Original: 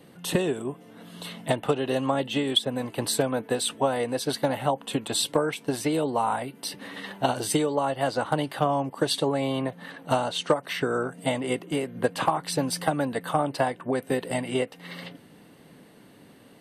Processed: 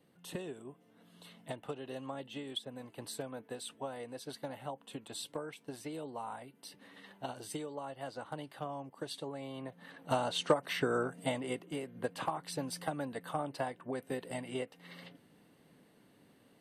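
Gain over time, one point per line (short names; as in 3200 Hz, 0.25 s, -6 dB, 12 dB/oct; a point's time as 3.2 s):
9.52 s -17 dB
10.31 s -5.5 dB
11.01 s -5.5 dB
11.7 s -12 dB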